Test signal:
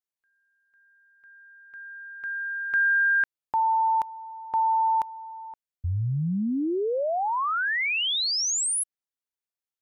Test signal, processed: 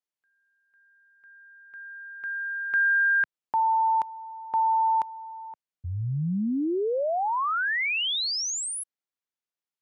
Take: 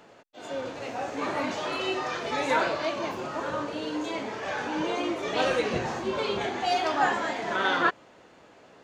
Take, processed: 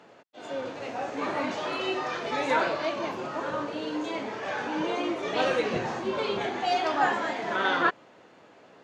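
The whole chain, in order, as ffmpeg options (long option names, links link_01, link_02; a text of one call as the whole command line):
ffmpeg -i in.wav -af "highpass=110,highshelf=frequency=8600:gain=-11.5" out.wav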